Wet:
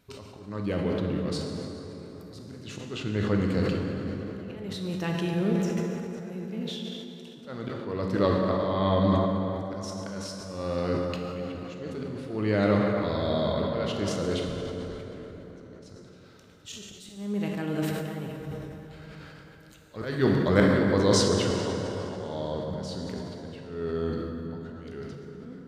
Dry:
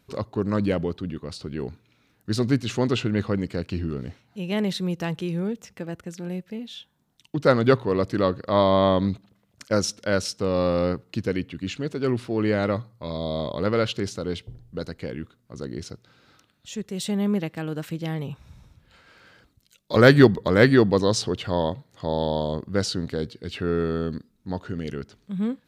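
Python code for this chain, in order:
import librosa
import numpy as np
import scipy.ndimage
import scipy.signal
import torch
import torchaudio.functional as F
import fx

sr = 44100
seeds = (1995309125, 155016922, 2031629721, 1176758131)

y = fx.auto_swell(x, sr, attack_ms=672.0)
y = fx.rev_plate(y, sr, seeds[0], rt60_s=4.3, hf_ratio=0.55, predelay_ms=0, drr_db=-0.5)
y = fx.sustainer(y, sr, db_per_s=29.0)
y = y * 10.0 ** (-1.5 / 20.0)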